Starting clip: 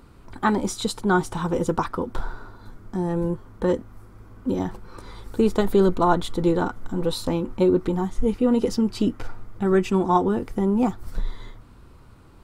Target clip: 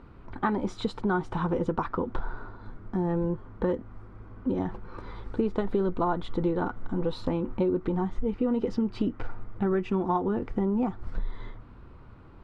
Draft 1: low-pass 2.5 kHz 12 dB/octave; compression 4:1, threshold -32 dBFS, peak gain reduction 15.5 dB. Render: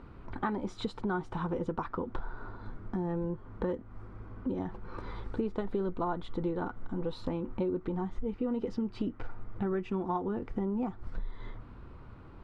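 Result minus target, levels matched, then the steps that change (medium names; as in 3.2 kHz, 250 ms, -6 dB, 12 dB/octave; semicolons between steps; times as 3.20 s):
compression: peak gain reduction +6 dB
change: compression 4:1, threshold -24 dBFS, peak gain reduction 9.5 dB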